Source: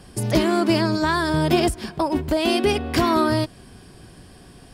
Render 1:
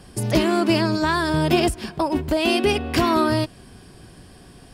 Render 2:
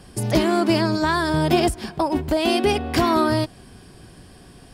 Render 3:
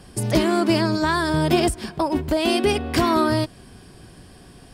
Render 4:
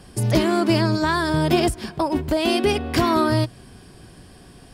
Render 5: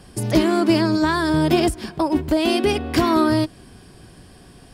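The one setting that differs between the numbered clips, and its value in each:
dynamic equaliser, frequency: 2,700, 780, 8,500, 120, 310 Hertz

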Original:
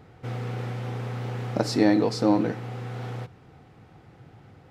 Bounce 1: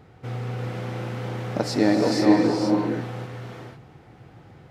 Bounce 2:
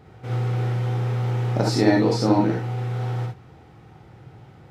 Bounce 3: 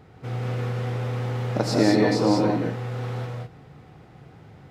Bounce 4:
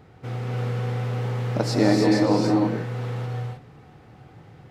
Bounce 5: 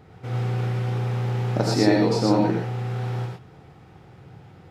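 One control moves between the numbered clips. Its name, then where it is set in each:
reverb whose tail is shaped and stops, gate: 530, 90, 230, 340, 140 milliseconds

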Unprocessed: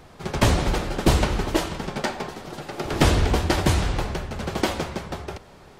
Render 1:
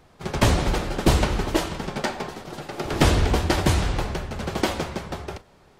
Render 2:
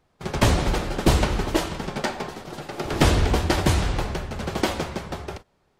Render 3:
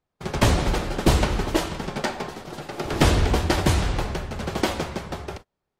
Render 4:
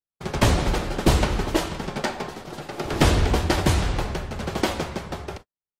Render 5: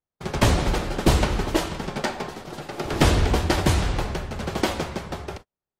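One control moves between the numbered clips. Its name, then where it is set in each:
noise gate, range: −7, −19, −34, −58, −46 decibels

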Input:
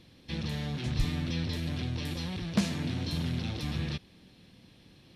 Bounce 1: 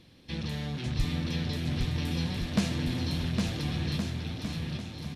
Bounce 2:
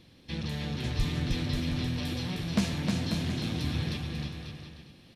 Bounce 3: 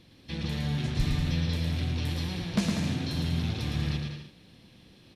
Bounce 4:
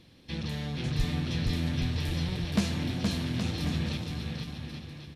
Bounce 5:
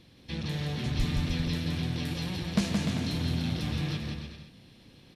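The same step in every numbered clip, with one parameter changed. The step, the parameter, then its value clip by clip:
bouncing-ball delay, first gap: 810, 310, 110, 470, 170 milliseconds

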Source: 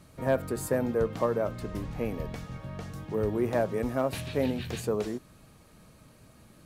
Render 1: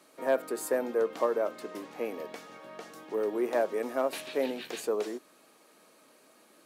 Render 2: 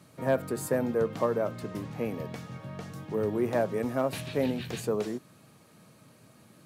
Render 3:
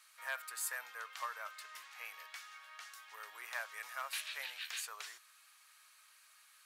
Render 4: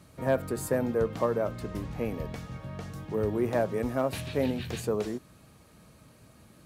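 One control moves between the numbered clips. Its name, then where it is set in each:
high-pass filter, corner frequency: 300, 110, 1,300, 44 Hertz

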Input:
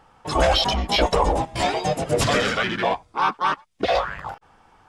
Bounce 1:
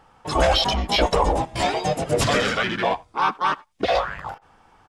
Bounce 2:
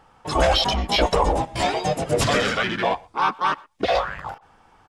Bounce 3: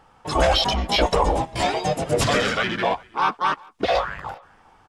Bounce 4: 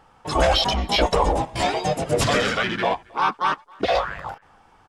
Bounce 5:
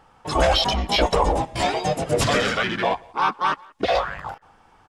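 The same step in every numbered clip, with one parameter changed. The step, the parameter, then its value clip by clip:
far-end echo of a speakerphone, delay time: 80, 120, 400, 270, 180 milliseconds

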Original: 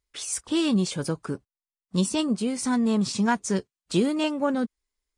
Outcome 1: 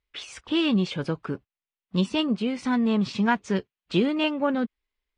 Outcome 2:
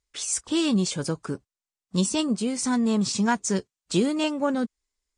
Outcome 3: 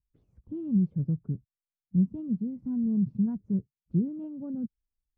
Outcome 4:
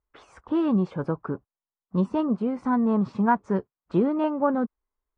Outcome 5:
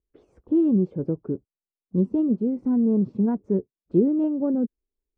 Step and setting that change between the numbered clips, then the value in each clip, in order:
low-pass with resonance, frequency: 2,900, 7,700, 150, 1,100, 390 Hertz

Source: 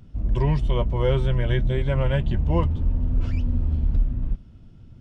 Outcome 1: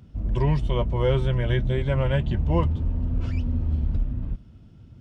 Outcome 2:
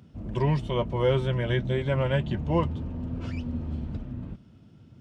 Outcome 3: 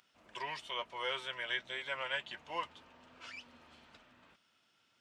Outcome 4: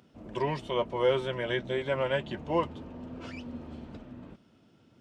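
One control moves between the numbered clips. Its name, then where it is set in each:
high-pass filter, corner frequency: 44, 130, 1,400, 340 Hertz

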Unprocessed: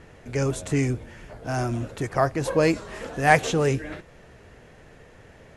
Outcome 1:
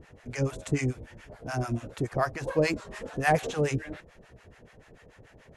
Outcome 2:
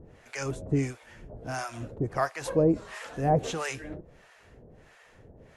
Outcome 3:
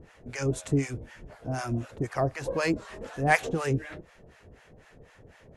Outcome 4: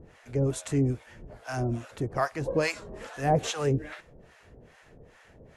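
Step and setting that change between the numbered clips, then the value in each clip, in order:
two-band tremolo in antiphase, speed: 6.9, 1.5, 4, 2.4 Hertz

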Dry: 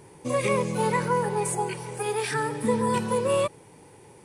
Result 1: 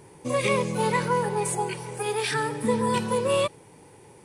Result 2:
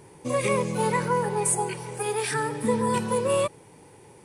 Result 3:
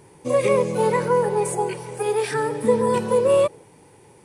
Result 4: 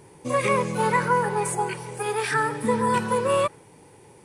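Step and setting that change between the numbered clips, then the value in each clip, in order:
dynamic equaliser, frequency: 3,600, 9,400, 500, 1,400 Hertz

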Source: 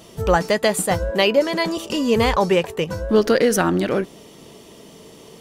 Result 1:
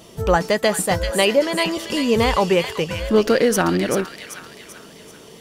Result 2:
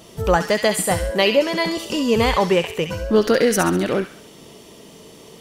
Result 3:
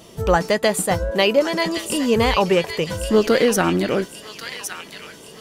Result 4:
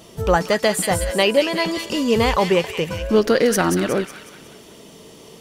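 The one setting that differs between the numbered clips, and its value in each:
delay with a high-pass on its return, delay time: 388, 67, 1,114, 183 milliseconds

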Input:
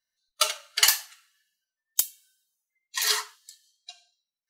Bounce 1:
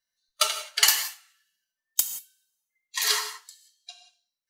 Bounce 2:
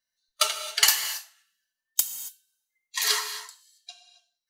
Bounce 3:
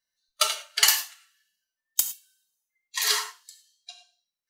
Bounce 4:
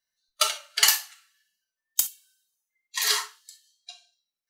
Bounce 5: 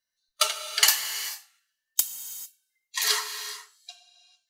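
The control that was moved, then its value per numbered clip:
reverb whose tail is shaped and stops, gate: 200, 300, 130, 80, 470 milliseconds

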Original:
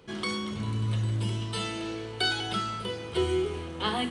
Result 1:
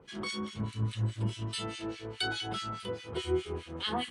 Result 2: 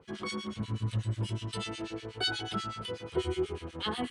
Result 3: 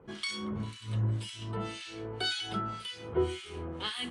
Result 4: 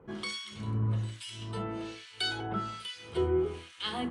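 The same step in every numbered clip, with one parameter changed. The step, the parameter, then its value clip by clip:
two-band tremolo in antiphase, speed: 4.8, 8.2, 1.9, 1.2 Hertz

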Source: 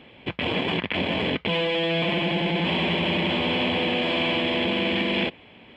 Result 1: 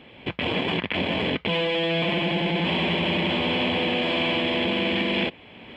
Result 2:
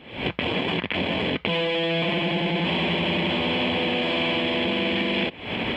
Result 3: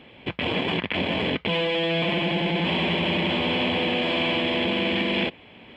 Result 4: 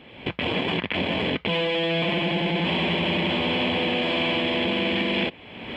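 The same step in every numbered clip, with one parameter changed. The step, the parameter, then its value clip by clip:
camcorder AGC, rising by: 14, 91, 5.4, 34 dB per second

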